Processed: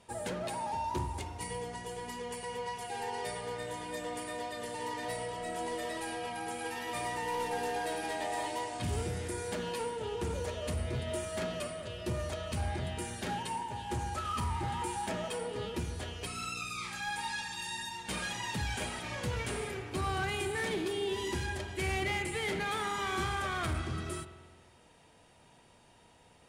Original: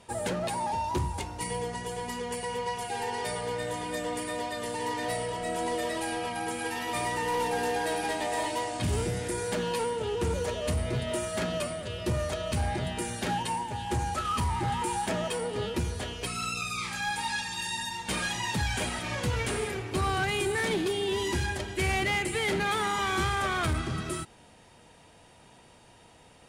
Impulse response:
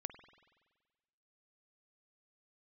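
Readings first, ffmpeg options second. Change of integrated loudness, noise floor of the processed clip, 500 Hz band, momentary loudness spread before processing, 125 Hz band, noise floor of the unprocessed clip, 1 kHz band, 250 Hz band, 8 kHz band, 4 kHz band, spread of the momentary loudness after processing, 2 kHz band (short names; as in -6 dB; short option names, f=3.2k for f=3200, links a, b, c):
-5.5 dB, -61 dBFS, -5.5 dB, 6 LU, -5.5 dB, -56 dBFS, -5.5 dB, -6.0 dB, -6.0 dB, -6.0 dB, 6 LU, -5.5 dB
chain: -filter_complex "[1:a]atrim=start_sample=2205[a];[0:a][a]afir=irnorm=-1:irlink=0,volume=-2.5dB"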